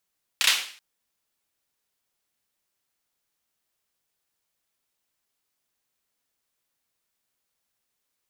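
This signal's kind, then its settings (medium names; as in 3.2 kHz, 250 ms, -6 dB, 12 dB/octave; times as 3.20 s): hand clap length 0.38 s, bursts 3, apart 31 ms, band 2.9 kHz, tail 0.49 s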